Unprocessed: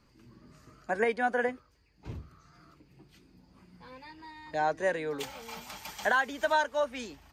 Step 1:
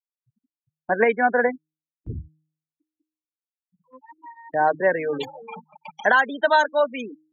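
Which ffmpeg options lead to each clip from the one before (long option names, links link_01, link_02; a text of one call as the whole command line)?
ffmpeg -i in.wav -af "afftfilt=real='re*gte(hypot(re,im),0.0224)':imag='im*gte(hypot(re,im),0.0224)':win_size=1024:overlap=0.75,agate=range=-15dB:threshold=-50dB:ratio=16:detection=peak,bandreject=frequency=155.7:width_type=h:width=4,bandreject=frequency=311.4:width_type=h:width=4,volume=9dB" out.wav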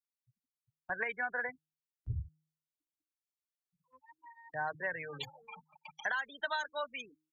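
ffmpeg -i in.wav -filter_complex "[0:a]firequalizer=gain_entry='entry(130,0);entry(210,-21);entry(1200,-5);entry(4300,-1)':delay=0.05:min_phase=1,acrossover=split=140[link_01][link_02];[link_02]acompressor=threshold=-27dB:ratio=10[link_03];[link_01][link_03]amix=inputs=2:normalize=0,volume=-4dB" out.wav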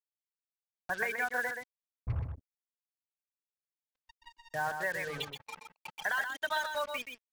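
ffmpeg -i in.wav -filter_complex "[0:a]asplit=2[link_01][link_02];[link_02]alimiter=level_in=10dB:limit=-24dB:level=0:latency=1:release=500,volume=-10dB,volume=-1.5dB[link_03];[link_01][link_03]amix=inputs=2:normalize=0,acrusher=bits=6:mix=0:aa=0.5,aecho=1:1:126:0.473" out.wav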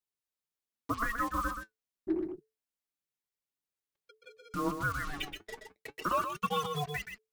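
ffmpeg -i in.wav -af "flanger=delay=1.2:depth=8.5:regen=57:speed=0.28:shape=triangular,afreqshift=-440,volume=5dB" out.wav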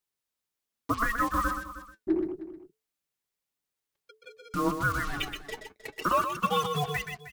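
ffmpeg -i in.wav -af "aecho=1:1:312:0.188,volume=5dB" out.wav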